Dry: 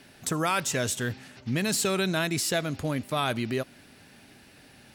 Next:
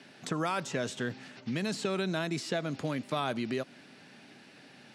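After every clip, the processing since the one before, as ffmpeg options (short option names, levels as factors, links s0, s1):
-filter_complex "[0:a]lowpass=6100,acrossover=split=1400|4500[s0][s1][s2];[s0]acompressor=threshold=0.0355:ratio=4[s3];[s1]acompressor=threshold=0.00794:ratio=4[s4];[s2]acompressor=threshold=0.00501:ratio=4[s5];[s3][s4][s5]amix=inputs=3:normalize=0,highpass=f=140:w=0.5412,highpass=f=140:w=1.3066"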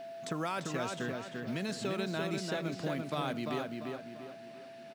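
-filter_complex "[0:a]aeval=exprs='val(0)+0.0126*sin(2*PI*670*n/s)':c=same,asplit=2[s0][s1];[s1]adelay=344,lowpass=f=3200:p=1,volume=0.668,asplit=2[s2][s3];[s3]adelay=344,lowpass=f=3200:p=1,volume=0.41,asplit=2[s4][s5];[s5]adelay=344,lowpass=f=3200:p=1,volume=0.41,asplit=2[s6][s7];[s7]adelay=344,lowpass=f=3200:p=1,volume=0.41,asplit=2[s8][s9];[s9]adelay=344,lowpass=f=3200:p=1,volume=0.41[s10];[s2][s4][s6][s8][s10]amix=inputs=5:normalize=0[s11];[s0][s11]amix=inputs=2:normalize=0,acrusher=bits=8:mode=log:mix=0:aa=0.000001,volume=0.631"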